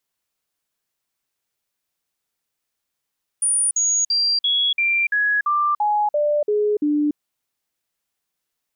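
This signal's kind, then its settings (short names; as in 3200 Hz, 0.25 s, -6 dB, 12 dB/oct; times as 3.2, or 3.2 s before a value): stepped sine 9470 Hz down, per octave 2, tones 11, 0.29 s, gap 0.05 s -16 dBFS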